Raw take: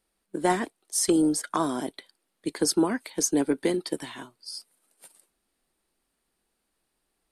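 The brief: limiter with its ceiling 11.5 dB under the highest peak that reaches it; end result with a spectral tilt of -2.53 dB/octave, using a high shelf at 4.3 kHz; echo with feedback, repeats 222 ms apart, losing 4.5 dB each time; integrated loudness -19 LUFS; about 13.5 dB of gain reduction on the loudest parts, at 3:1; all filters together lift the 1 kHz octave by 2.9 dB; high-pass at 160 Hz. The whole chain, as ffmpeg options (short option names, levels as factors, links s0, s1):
-af "highpass=160,equalizer=f=1000:t=o:g=3.5,highshelf=f=4300:g=3.5,acompressor=threshold=0.0141:ratio=3,alimiter=level_in=2.24:limit=0.0631:level=0:latency=1,volume=0.447,aecho=1:1:222|444|666|888|1110|1332|1554|1776|1998:0.596|0.357|0.214|0.129|0.0772|0.0463|0.0278|0.0167|0.01,volume=11.9"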